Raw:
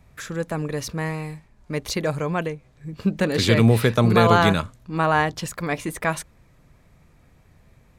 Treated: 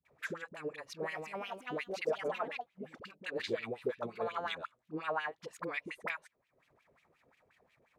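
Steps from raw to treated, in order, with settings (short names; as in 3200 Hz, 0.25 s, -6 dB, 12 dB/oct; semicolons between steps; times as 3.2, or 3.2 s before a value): transient shaper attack +3 dB, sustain -10 dB; 0.62–3.06 echoes that change speed 0.387 s, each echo +4 st, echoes 2; high shelf 6500 Hz +12 dB; compressor 5:1, threshold -26 dBFS, peak gain reduction 14.5 dB; dispersion highs, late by 54 ms, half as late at 580 Hz; wah 5.6 Hz 420–3000 Hz, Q 3.1; gain +1 dB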